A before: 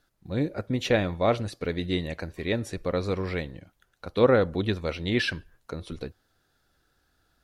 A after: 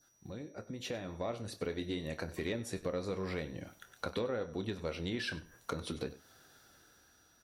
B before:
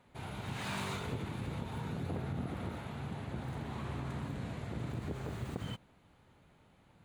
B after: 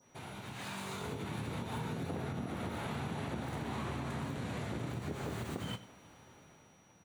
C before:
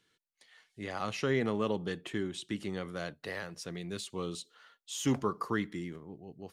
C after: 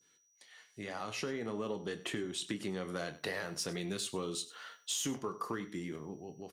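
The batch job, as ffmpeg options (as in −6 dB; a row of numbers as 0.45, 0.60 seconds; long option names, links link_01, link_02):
-filter_complex "[0:a]highshelf=frequency=6900:gain=4,asplit=2[link_01][link_02];[link_02]adelay=26,volume=-12.5dB[link_03];[link_01][link_03]amix=inputs=2:normalize=0,adynamicequalizer=threshold=0.00447:dfrequency=2400:dqfactor=0.78:tfrequency=2400:tqfactor=0.78:attack=5:release=100:ratio=0.375:range=2:mode=cutabove:tftype=bell,acompressor=threshold=-41dB:ratio=16,highpass=frequency=150:poles=1,aecho=1:1:97:0.133,dynaudnorm=framelen=220:gausssize=9:maxgain=8.5dB,asoftclip=type=tanh:threshold=-24.5dB,flanger=delay=7.6:depth=4.6:regen=-77:speed=0.47:shape=sinusoidal,aeval=exprs='val(0)+0.0002*sin(2*PI*5800*n/s)':channel_layout=same,volume=5dB"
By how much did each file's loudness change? −12.0, +0.5, −3.0 LU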